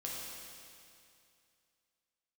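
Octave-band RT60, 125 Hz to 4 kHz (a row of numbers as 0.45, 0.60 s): 2.6, 2.5, 2.5, 2.5, 2.5, 2.5 s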